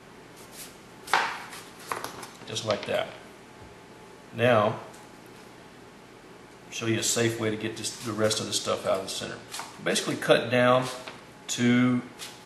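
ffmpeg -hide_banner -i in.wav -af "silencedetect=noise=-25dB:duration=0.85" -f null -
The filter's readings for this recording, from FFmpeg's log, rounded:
silence_start: 0.00
silence_end: 1.14 | silence_duration: 1.14
silence_start: 3.02
silence_end: 4.39 | silence_duration: 1.37
silence_start: 4.72
silence_end: 6.76 | silence_duration: 2.04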